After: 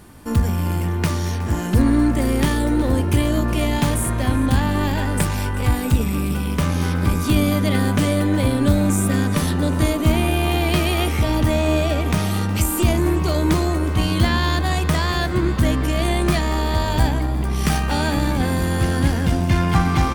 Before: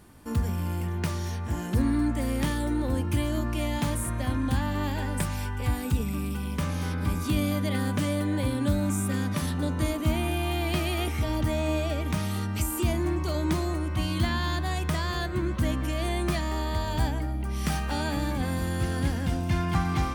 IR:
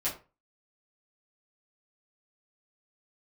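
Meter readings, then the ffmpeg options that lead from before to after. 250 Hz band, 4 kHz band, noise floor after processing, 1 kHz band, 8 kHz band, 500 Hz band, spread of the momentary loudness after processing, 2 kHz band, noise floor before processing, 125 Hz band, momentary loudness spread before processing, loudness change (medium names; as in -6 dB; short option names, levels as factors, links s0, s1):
+9.0 dB, +8.5 dB, -23 dBFS, +9.0 dB, +8.5 dB, +9.0 dB, 4 LU, +9.0 dB, -32 dBFS, +8.5 dB, 4 LU, +8.5 dB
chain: -filter_complex "[0:a]aeval=exprs='0.237*(cos(1*acos(clip(val(0)/0.237,-1,1)))-cos(1*PI/2))+0.0106*(cos(6*acos(clip(val(0)/0.237,-1,1)))-cos(6*PI/2))':c=same,asplit=6[s0][s1][s2][s3][s4][s5];[s1]adelay=366,afreqshift=93,volume=0.141[s6];[s2]adelay=732,afreqshift=186,volume=0.0822[s7];[s3]adelay=1098,afreqshift=279,volume=0.0473[s8];[s4]adelay=1464,afreqshift=372,volume=0.0275[s9];[s5]adelay=1830,afreqshift=465,volume=0.016[s10];[s0][s6][s7][s8][s9][s10]amix=inputs=6:normalize=0,volume=2.66"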